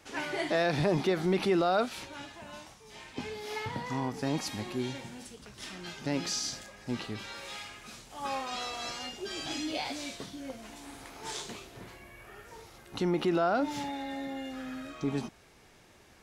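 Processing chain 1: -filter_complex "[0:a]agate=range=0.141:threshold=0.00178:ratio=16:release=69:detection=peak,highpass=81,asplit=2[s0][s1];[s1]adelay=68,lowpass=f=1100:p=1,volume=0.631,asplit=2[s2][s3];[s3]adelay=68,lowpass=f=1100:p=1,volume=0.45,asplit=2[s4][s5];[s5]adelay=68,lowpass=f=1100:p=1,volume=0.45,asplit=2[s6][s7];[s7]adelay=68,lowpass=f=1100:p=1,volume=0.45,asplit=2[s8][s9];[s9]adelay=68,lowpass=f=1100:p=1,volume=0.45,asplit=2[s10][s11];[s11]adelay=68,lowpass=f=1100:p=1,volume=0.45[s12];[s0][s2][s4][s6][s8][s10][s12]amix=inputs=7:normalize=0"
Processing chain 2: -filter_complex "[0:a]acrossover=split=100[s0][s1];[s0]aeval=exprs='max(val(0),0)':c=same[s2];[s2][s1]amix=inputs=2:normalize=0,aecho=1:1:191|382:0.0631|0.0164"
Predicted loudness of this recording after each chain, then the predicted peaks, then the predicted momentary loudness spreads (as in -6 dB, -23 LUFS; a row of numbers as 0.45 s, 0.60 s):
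-32.0 LUFS, -33.5 LUFS; -13.0 dBFS, -16.0 dBFS; 20 LU, 19 LU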